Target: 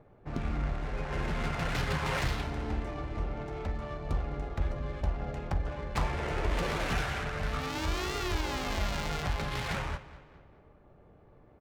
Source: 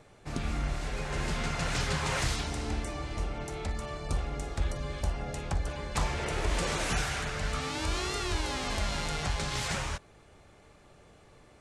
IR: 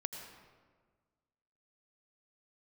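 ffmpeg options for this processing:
-filter_complex "[0:a]adynamicsmooth=sensitivity=7:basefreq=1.1k,asplit=2[a][b];[b]adelay=209,lowpass=f=4.7k:p=1,volume=-16dB,asplit=2[c][d];[d]adelay=209,lowpass=f=4.7k:p=1,volume=0.48,asplit=2[e][f];[f]adelay=209,lowpass=f=4.7k:p=1,volume=0.48,asplit=2[g][h];[h]adelay=209,lowpass=f=4.7k:p=1,volume=0.48[i];[a][c][e][g][i]amix=inputs=5:normalize=0"

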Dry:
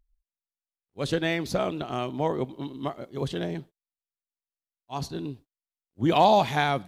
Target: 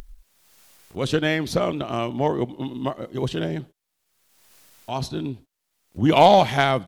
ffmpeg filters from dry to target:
-af "aeval=exprs='0.376*(cos(1*acos(clip(val(0)/0.376,-1,1)))-cos(1*PI/2))+0.0335*(cos(3*acos(clip(val(0)/0.376,-1,1)))-cos(3*PI/2))':c=same,asetrate=41625,aresample=44100,atempo=1.05946,acompressor=mode=upward:threshold=-31dB:ratio=2.5,volume=7dB"

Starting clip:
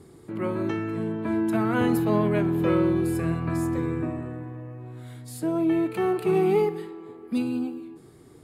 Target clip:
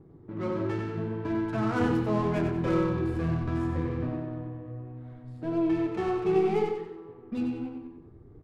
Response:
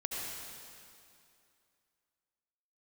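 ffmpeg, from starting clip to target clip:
-filter_complex "[0:a]lowshelf=f=78:g=9,adynamicsmooth=sensitivity=5.5:basefreq=880,asubboost=boost=2.5:cutoff=110,flanger=delay=6.1:depth=9.7:regen=-41:speed=0.71:shape=sinusoidal,asplit=2[a][b];[b]aecho=0:1:93|186|279|372|465:0.501|0.19|0.0724|0.0275|0.0105[c];[a][c]amix=inputs=2:normalize=0"

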